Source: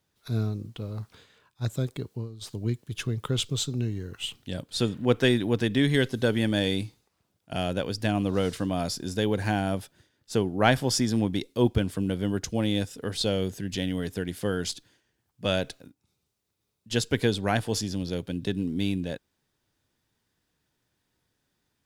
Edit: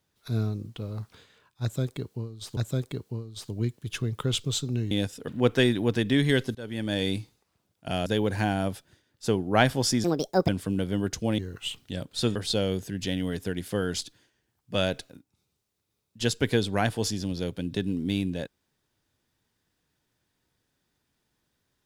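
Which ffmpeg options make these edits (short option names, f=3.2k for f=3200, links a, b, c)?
-filter_complex "[0:a]asplit=10[a][b][c][d][e][f][g][h][i][j];[a]atrim=end=2.572[k];[b]atrim=start=1.618:end=3.962[l];[c]atrim=start=12.688:end=13.062[m];[d]atrim=start=4.928:end=6.2,asetpts=PTS-STARTPTS,afade=t=out:st=1.268:d=0.004:c=hsin:silence=0.0668344[n];[e]atrim=start=6.2:end=7.712,asetpts=PTS-STARTPTS,afade=t=in:d=0.56:silence=0.0668344[o];[f]atrim=start=9.128:end=11.114[p];[g]atrim=start=11.11:end=11.79,asetpts=PTS-STARTPTS,asetrate=67473,aresample=44100[q];[h]atrim=start=11.786:end=12.692[r];[i]atrim=start=3.958:end=4.932[s];[j]atrim=start=13.058[t];[k][l]acrossfade=d=0.004:c1=hsin:c2=hsin[u];[u][m]acrossfade=d=0.004:c1=hsin:c2=hsin[v];[n][o]concat=n=2:v=0:a=1[w];[v][w]acrossfade=d=0.004:c1=hsin:c2=hsin[x];[x][p]acrossfade=d=0.004:c1=hsin:c2=hsin[y];[y][q]acrossfade=d=0.004:c1=hsin:c2=hsin[z];[z][r]acrossfade=d=0.004:c1=hsin:c2=hsin[aa];[aa][s]acrossfade=d=0.004:c1=hsin:c2=hsin[ab];[ab][t]acrossfade=d=0.004:c1=hsin:c2=hsin"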